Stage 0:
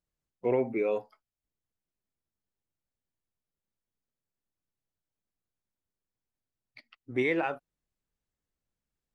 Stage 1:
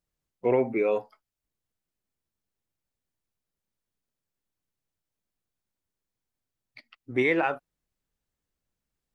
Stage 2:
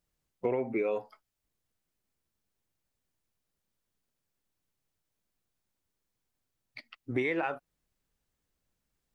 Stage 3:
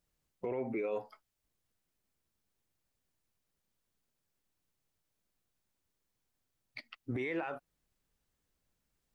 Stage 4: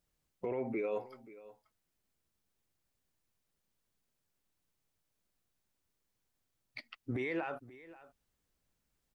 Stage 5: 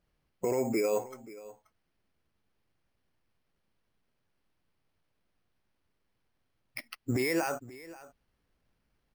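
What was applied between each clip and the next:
dynamic EQ 1300 Hz, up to +3 dB, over -42 dBFS, Q 0.73; gain +3 dB
compressor 5:1, threshold -31 dBFS, peak gain reduction 11.5 dB; gain +3 dB
limiter -28 dBFS, peak gain reduction 11 dB
echo 0.531 s -18.5 dB
careless resampling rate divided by 6×, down filtered, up hold; gain +7 dB

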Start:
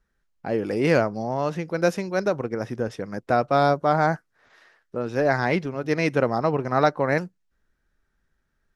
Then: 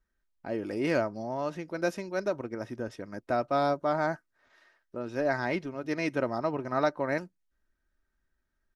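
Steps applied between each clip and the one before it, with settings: comb 3.2 ms, depth 39%; gain -8 dB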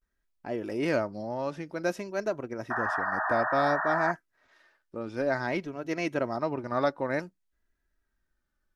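vibrato 0.55 Hz 93 cents; painted sound noise, 2.7–4.12, 610–1900 Hz -30 dBFS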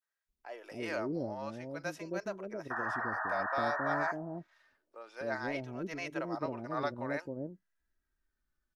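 bands offset in time highs, lows 0.27 s, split 530 Hz; gain -5.5 dB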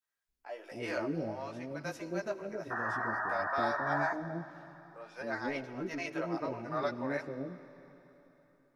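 chorus voices 2, 0.55 Hz, delay 15 ms, depth 3.5 ms; reverb RT60 3.6 s, pre-delay 77 ms, DRR 14 dB; gain +3.5 dB

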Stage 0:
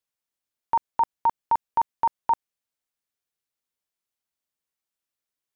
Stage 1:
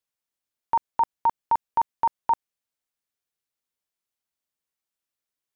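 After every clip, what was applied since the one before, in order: nothing audible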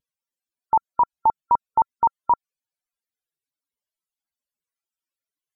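wow and flutter 82 cents; loudest bins only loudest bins 64; gain +3.5 dB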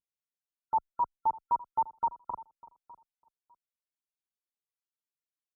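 feedback echo 0.601 s, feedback 16%, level -19.5 dB; endless flanger 7 ms +2 Hz; gain -8.5 dB

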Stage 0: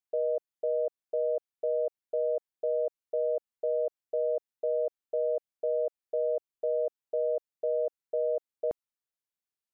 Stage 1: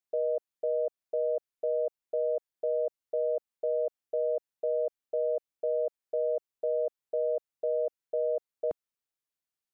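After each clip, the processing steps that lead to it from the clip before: dynamic EQ 190 Hz, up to -3 dB, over -48 dBFS, Q 1.4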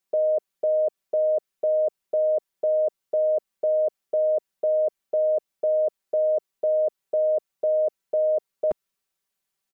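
comb 5.2 ms, depth 86%; gain +7 dB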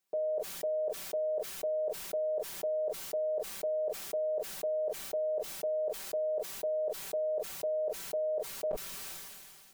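limiter -27.5 dBFS, peak gain reduction 10.5 dB; reverb, pre-delay 6 ms, DRR 12.5 dB; sustainer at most 27 dB/s; gain -1 dB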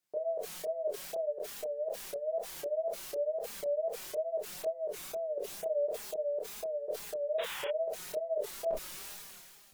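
painted sound noise, 7.38–7.68, 780–3700 Hz -40 dBFS; wow and flutter 120 cents; chorus voices 2, 0.43 Hz, delay 27 ms, depth 2.3 ms; gain +1.5 dB

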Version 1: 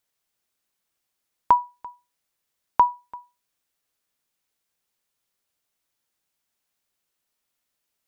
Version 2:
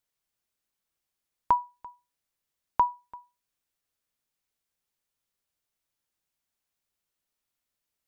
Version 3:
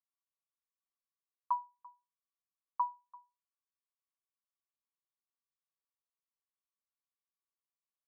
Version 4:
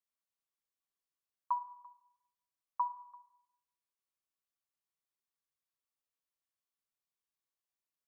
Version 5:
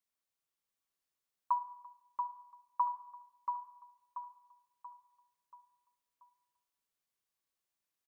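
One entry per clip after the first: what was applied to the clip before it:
low shelf 120 Hz +7 dB; gain -6 dB
band-pass 1100 Hz, Q 13; comb 6.1 ms, depth 74%; gain -4 dB
Schroeder reverb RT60 0.87 s, DRR 13 dB; gain -1 dB
feedback echo 0.683 s, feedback 44%, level -5 dB; gain +2 dB

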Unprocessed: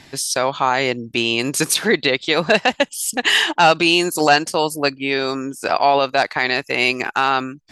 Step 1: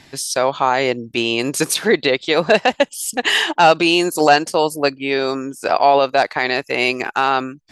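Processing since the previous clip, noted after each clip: dynamic EQ 520 Hz, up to +5 dB, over -27 dBFS, Q 0.77; gain -1.5 dB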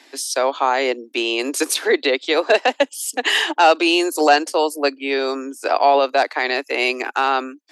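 steep high-pass 260 Hz 72 dB/oct; gain -1.5 dB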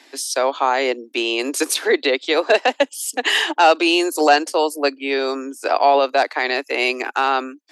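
nothing audible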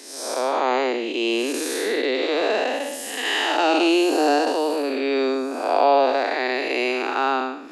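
time blur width 0.285 s; low shelf 490 Hz +4.5 dB; reverse; upward compressor, threshold -35 dBFS; reverse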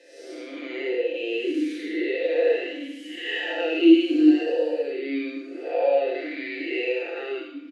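comb 5.8 ms, depth 90%; FDN reverb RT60 0.85 s, low-frequency decay 1×, high-frequency decay 0.85×, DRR 1 dB; vowel sweep e-i 0.85 Hz

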